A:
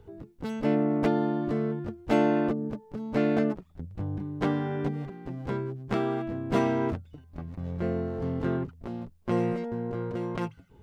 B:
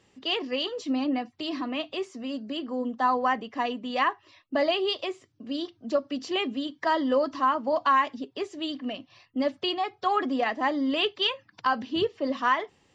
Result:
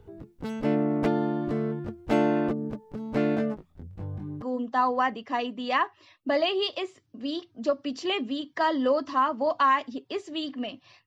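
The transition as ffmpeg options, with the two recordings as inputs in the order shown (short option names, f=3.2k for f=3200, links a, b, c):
-filter_complex "[0:a]asplit=3[a][b][c];[a]afade=t=out:st=3.35:d=0.02[d];[b]flanger=delay=18.5:depth=3.9:speed=0.87,afade=t=in:st=3.35:d=0.02,afade=t=out:st=4.42:d=0.02[e];[c]afade=t=in:st=4.42:d=0.02[f];[d][e][f]amix=inputs=3:normalize=0,apad=whole_dur=11.06,atrim=end=11.06,atrim=end=4.422[g];[1:a]atrim=start=2.678:end=9.32[h];[g][h]acrossfade=d=0.004:c1=hsin:c2=hsin"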